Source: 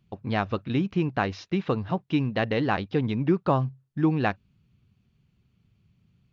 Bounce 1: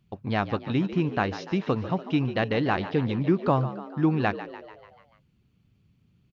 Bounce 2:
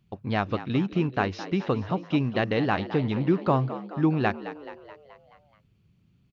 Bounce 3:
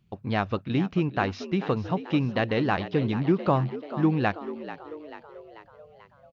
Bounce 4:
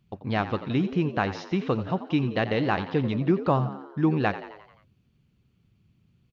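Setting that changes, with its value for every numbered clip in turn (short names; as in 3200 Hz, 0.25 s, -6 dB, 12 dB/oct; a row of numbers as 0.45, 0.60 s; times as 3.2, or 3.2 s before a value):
frequency-shifting echo, time: 146, 214, 439, 87 ms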